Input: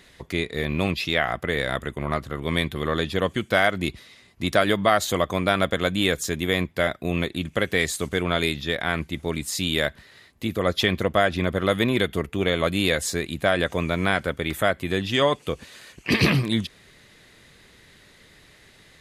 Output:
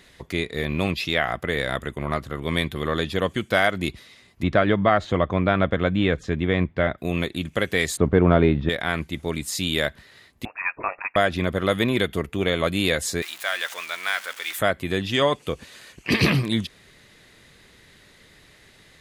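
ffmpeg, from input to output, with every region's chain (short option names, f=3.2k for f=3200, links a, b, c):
-filter_complex "[0:a]asettb=1/sr,asplit=3[a][b][c];[a]atrim=end=4.434[d];[b]atrim=start=4.43:end=6.98,asetpts=PTS-STARTPTS,afade=t=in:d=0.004:c=qsin,afade=t=out:st=2.546:d=0.004:c=qsin,lowpass=2.4k,lowshelf=f=210:g=7[e];[c]atrim=start=6.976[f];[d][e]acrossfade=d=0.004:c1=hsin:c2=qsin[g];[g][f]acrossfade=d=0.004:c1=qsin:c2=hsin,asettb=1/sr,asplit=3[h][i][j];[h]atrim=end=7.974[k];[i]atrim=start=7.97:end=8.69,asetpts=PTS-STARTPTS,afade=t=in:d=0.004:c=qsin,afade=t=out:st=0.716:d=0.004:c=qsin,lowpass=1.2k,acontrast=64,lowshelf=f=370:g=4.5[l];[j]atrim=start=8.686[m];[k][l]acrossfade=d=0.004:c1=hsin:c2=qsin[n];[n][m]acrossfade=d=0.004:c1=qsin:c2=hsin,asettb=1/sr,asplit=3[o][p][q];[o]atrim=end=10.454[r];[p]atrim=start=10.45:end=11.16,asetpts=PTS-STARTPTS,afade=t=in:d=0.004:c=qsin,afade=t=out:st=0.706:d=0.004:c=qsin,highpass=f=600:w=0.5412,highpass=f=600:w=1.3066,lowpass=f=2.6k:t=q:w=0.5098,lowpass=f=2.6k:t=q:w=0.6013,lowpass=f=2.6k:t=q:w=0.9,lowpass=f=2.6k:t=q:w=2.563,afreqshift=-3000[s];[q]atrim=start=11.156[t];[r][s]acrossfade=d=0.004:c1=hsin:c2=qsin[u];[u][t]acrossfade=d=0.004:c1=qsin:c2=hsin,asettb=1/sr,asplit=3[v][w][x];[v]atrim=end=13.224[y];[w]atrim=start=13.22:end=14.59,asetpts=PTS-STARTPTS,afade=t=in:d=0.004:c=qsin,afade=t=out:st=1.366:d=0.004:c=qsin,aeval=exprs='val(0)+0.5*0.0299*sgn(val(0))':c=same,highpass=1.3k,acrusher=bits=6:mode=log:mix=0:aa=0.000001[z];[x]atrim=start=14.586[aa];[y][z]acrossfade=d=0.004:c1=hsin:c2=qsin[ab];[ab][aa]acrossfade=d=0.004:c1=qsin:c2=hsin"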